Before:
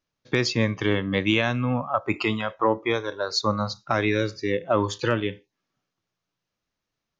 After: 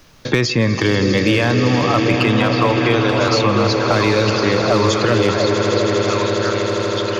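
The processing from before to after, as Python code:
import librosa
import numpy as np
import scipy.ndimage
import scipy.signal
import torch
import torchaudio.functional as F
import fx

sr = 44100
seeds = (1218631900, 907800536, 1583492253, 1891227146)

p1 = fx.over_compress(x, sr, threshold_db=-31.0, ratio=-1.0)
p2 = x + F.gain(torch.from_numpy(p1), 0.0).numpy()
p3 = fx.echo_swell(p2, sr, ms=80, loudest=8, wet_db=-14.5)
p4 = np.clip(p3, -10.0 ** (-10.0 / 20.0), 10.0 ** (-10.0 / 20.0))
p5 = fx.low_shelf(p4, sr, hz=89.0, db=5.5)
p6 = p5 + fx.echo_stepped(p5, sr, ms=690, hz=450.0, octaves=1.4, feedback_pct=70, wet_db=-1.5, dry=0)
p7 = fx.band_squash(p6, sr, depth_pct=70)
y = F.gain(torch.from_numpy(p7), 3.0).numpy()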